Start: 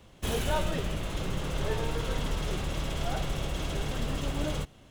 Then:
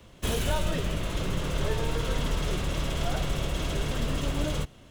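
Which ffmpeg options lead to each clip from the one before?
-filter_complex "[0:a]bandreject=f=800:w=12,acrossover=split=160|3000[s0][s1][s2];[s1]acompressor=threshold=0.0282:ratio=6[s3];[s0][s3][s2]amix=inputs=3:normalize=0,volume=1.41"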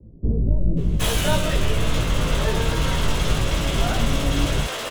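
-filter_complex "[0:a]asplit=2[s0][s1];[s1]adelay=18,volume=0.668[s2];[s0][s2]amix=inputs=2:normalize=0,acrossover=split=400[s3][s4];[s4]adelay=770[s5];[s3][s5]amix=inputs=2:normalize=0,volume=2.24"

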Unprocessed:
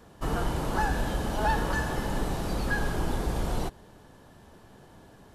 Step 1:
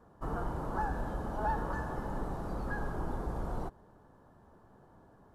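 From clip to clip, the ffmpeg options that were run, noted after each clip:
-af "highshelf=f=1800:t=q:w=1.5:g=-11.5,volume=0.422"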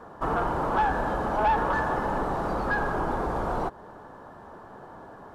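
-filter_complex "[0:a]asplit=2[s0][s1];[s1]acompressor=threshold=0.00708:ratio=6,volume=0.891[s2];[s0][s2]amix=inputs=2:normalize=0,asplit=2[s3][s4];[s4]highpass=f=720:p=1,volume=5.01,asoftclip=type=tanh:threshold=0.106[s5];[s3][s5]amix=inputs=2:normalize=0,lowpass=f=2600:p=1,volume=0.501,volume=1.88"

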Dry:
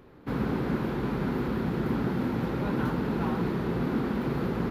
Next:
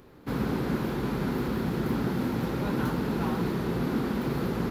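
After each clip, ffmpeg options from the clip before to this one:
-af "bass=f=250:g=0,treble=f=4000:g=9"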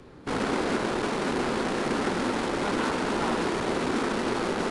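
-filter_complex "[0:a]aeval=exprs='0.15*(cos(1*acos(clip(val(0)/0.15,-1,1)))-cos(1*PI/2))+0.0168*(cos(8*acos(clip(val(0)/0.15,-1,1)))-cos(8*PI/2))':c=same,acrossover=split=240|550|4400[s0][s1][s2][s3];[s0]aeval=exprs='(mod(56.2*val(0)+1,2)-1)/56.2':c=same[s4];[s4][s1][s2][s3]amix=inputs=4:normalize=0,volume=1.68" -ar 22050 -c:a aac -b:a 96k

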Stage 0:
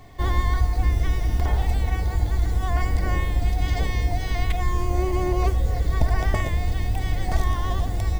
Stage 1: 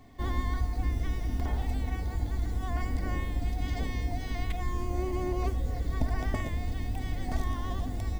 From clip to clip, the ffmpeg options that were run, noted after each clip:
-af "equalizer=f=250:t=o:w=0.41:g=12,volume=0.355"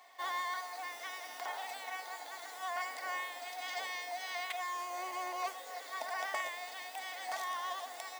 -af "highpass=f=700:w=0.5412,highpass=f=700:w=1.3066,volume=1.5"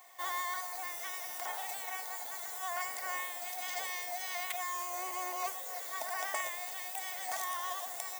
-af "aexciter=amount=3.4:drive=4.7:freq=6200"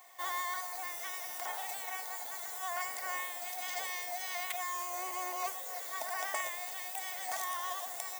-af anull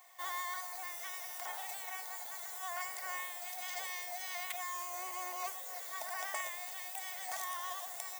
-af "lowshelf=f=370:g=-8.5,volume=0.75"

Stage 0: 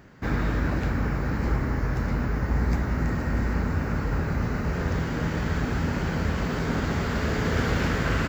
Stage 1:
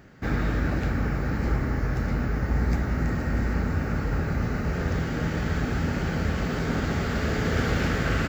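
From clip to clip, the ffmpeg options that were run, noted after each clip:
-af "bandreject=f=1000:w=7.3"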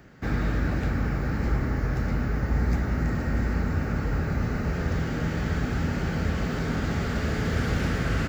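-filter_complex "[0:a]acrossover=split=260|740[s0][s1][s2];[s1]alimiter=level_in=2.11:limit=0.0631:level=0:latency=1,volume=0.473[s3];[s2]asoftclip=type=tanh:threshold=0.0299[s4];[s0][s3][s4]amix=inputs=3:normalize=0"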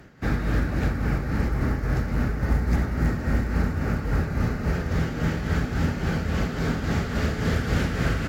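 -af "acrusher=bits=9:mode=log:mix=0:aa=0.000001,tremolo=f=3.6:d=0.5,volume=1.58" -ar 48000 -c:a libvorbis -b:a 64k

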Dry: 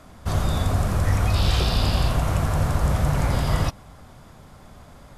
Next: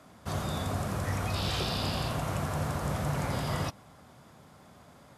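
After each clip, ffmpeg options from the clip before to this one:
-af "highpass=120,volume=0.501"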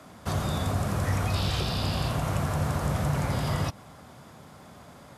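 -filter_complex "[0:a]acrossover=split=160[s0][s1];[s1]acompressor=threshold=0.0178:ratio=6[s2];[s0][s2]amix=inputs=2:normalize=0,volume=2"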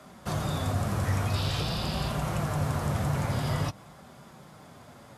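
-af "flanger=delay=5:depth=4.1:regen=-40:speed=0.48:shape=sinusoidal,volume=1.33"

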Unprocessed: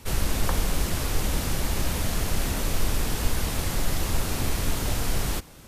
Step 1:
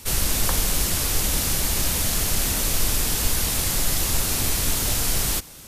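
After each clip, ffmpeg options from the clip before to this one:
-af "highshelf=f=3100:g=12"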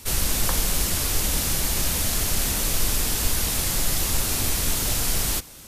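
-af "flanger=delay=2.9:depth=3.2:regen=-84:speed=0.92:shape=sinusoidal,volume=1.5"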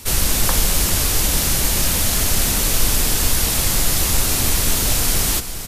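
-af "aecho=1:1:398:0.282,volume=1.88"

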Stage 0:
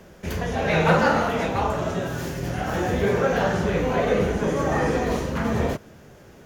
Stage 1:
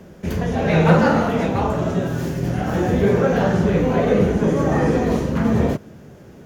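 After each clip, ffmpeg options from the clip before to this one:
-af "equalizer=f=190:w=0.44:g=9,volume=0.891"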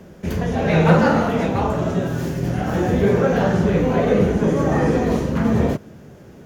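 -af anull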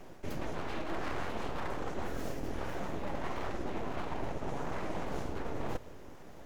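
-af "areverse,acompressor=threshold=0.0562:ratio=12,areverse,aeval=exprs='abs(val(0))':c=same,volume=0.531"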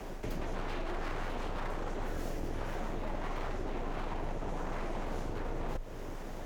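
-af "acompressor=threshold=0.00891:ratio=5,afreqshift=25,volume=2.51"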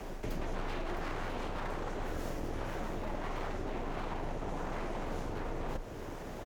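-af "aecho=1:1:661:0.282"

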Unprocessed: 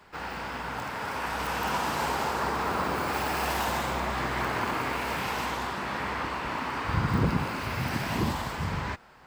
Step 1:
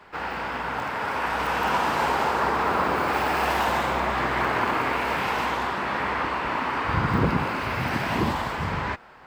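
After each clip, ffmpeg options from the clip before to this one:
-af "bass=f=250:g=-5,treble=f=4000:g=-9,volume=2"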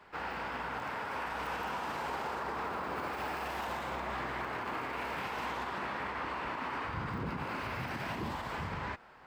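-af "alimiter=limit=0.0891:level=0:latency=1:release=86,volume=0.422"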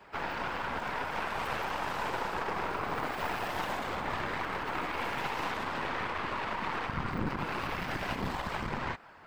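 -af "afftfilt=real='hypot(re,im)*cos(2*PI*random(0))':imag='hypot(re,im)*sin(2*PI*random(1))':win_size=512:overlap=0.75,aeval=exprs='0.0376*(cos(1*acos(clip(val(0)/0.0376,-1,1)))-cos(1*PI/2))+0.0075*(cos(4*acos(clip(val(0)/0.0376,-1,1)))-cos(4*PI/2))':c=same,volume=2.66"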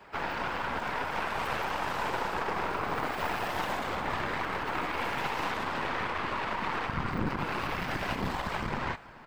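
-af "aecho=1:1:430:0.0891,volume=1.26"

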